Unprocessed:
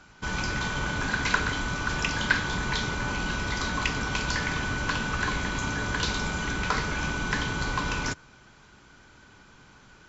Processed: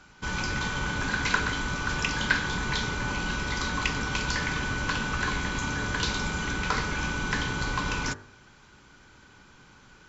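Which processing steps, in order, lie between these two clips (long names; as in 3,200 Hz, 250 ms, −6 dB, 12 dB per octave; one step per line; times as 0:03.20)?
notch filter 660 Hz, Q 12
hum removal 49.25 Hz, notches 39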